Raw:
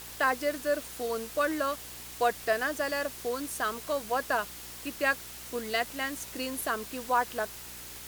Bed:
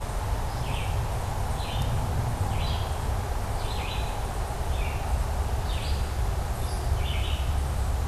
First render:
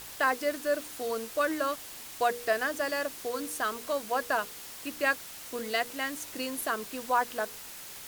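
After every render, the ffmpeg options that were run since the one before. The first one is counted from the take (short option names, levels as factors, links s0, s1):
-af "bandreject=f=60:t=h:w=4,bandreject=f=120:t=h:w=4,bandreject=f=180:t=h:w=4,bandreject=f=240:t=h:w=4,bandreject=f=300:t=h:w=4,bandreject=f=360:t=h:w=4,bandreject=f=420:t=h:w=4,bandreject=f=480:t=h:w=4"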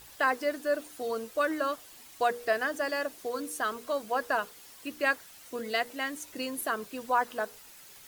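-af "afftdn=nr=9:nf=-45"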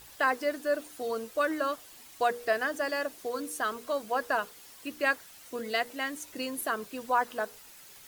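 -af anull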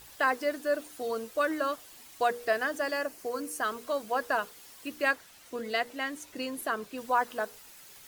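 -filter_complex "[0:a]asettb=1/sr,asplit=3[s0][s1][s2];[s0]atrim=end=2.974[s3];[s1]atrim=start=2.97:end=3.63,asetpts=PTS-STARTPTS,afade=t=in:d=0.004:c=qsin,afade=t=out:st=0.656:d=0.004:c=qsin,equalizer=f=3600:w=5.8:g=-10.5[s4];[s2]atrim=start=3.626[s5];[s3][s4]acrossfade=d=0.004:c1=hsin:c2=qsin[s6];[s6][s5]acrossfade=d=0.004:c1=qsin:c2=hsin,asettb=1/sr,asplit=3[s7][s8][s9];[s7]atrim=end=5.114[s10];[s8]atrim=start=5.11:end=6.98,asetpts=PTS-STARTPTS,afade=t=in:d=0.004:c=qsin,afade=t=out:st=1.866:d=0.004:c=qsin,highshelf=f=6900:g=-6[s11];[s9]atrim=start=6.976[s12];[s10][s11]acrossfade=d=0.004:c1=hsin:c2=qsin[s13];[s13][s12]acrossfade=d=0.004:c1=qsin:c2=hsin"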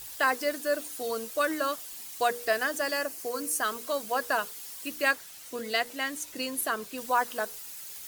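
-af "highshelf=f=3800:g=11"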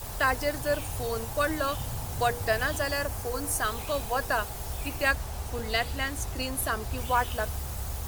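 -filter_complex "[1:a]volume=0.398[s0];[0:a][s0]amix=inputs=2:normalize=0"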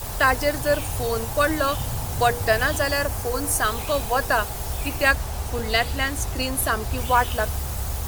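-af "volume=2.11"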